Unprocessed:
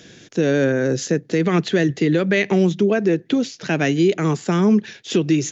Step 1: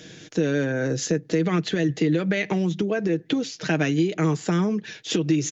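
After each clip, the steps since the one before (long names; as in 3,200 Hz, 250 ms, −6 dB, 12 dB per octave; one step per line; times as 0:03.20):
downward compressor, threshold −20 dBFS, peak gain reduction 8.5 dB
comb filter 6.4 ms, depth 42%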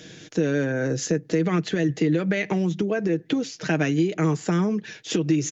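dynamic equaliser 3,700 Hz, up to −4 dB, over −47 dBFS, Q 1.8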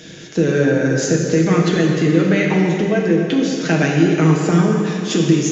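dense smooth reverb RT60 2.6 s, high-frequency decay 0.85×, DRR −1 dB
level +4.5 dB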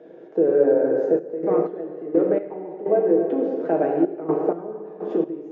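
gate pattern "xxxxx.x..x.." 63 BPM −12 dB
flat-topped band-pass 550 Hz, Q 1.2
level +1.5 dB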